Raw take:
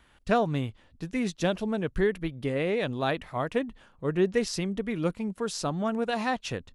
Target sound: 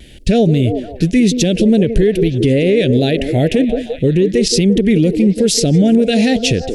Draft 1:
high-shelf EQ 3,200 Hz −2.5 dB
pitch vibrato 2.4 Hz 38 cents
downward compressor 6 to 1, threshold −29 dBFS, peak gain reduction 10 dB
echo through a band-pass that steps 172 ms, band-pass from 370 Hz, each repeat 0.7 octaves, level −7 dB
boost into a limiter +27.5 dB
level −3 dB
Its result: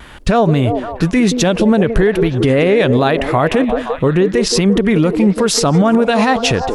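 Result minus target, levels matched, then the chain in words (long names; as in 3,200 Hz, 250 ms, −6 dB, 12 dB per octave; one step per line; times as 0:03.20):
1,000 Hz band +11.5 dB
Butterworth band-reject 1,100 Hz, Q 0.54
high-shelf EQ 3,200 Hz −2.5 dB
pitch vibrato 2.4 Hz 38 cents
downward compressor 6 to 1, threshold −29 dBFS, peak gain reduction 9 dB
echo through a band-pass that steps 172 ms, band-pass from 370 Hz, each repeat 0.7 octaves, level −7 dB
boost into a limiter +27.5 dB
level −3 dB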